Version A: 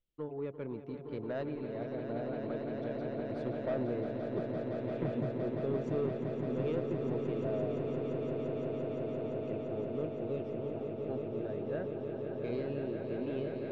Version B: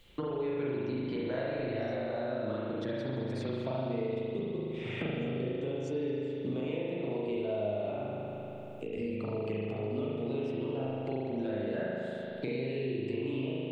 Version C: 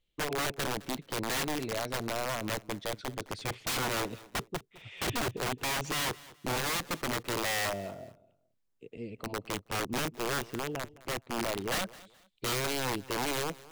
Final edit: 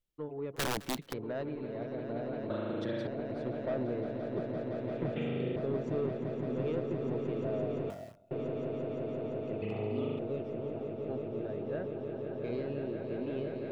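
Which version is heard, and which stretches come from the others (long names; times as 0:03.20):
A
0:00.56–0:01.13: punch in from C
0:02.50–0:03.07: punch in from B
0:05.16–0:05.56: punch in from B
0:07.90–0:08.31: punch in from C
0:09.62–0:10.19: punch in from B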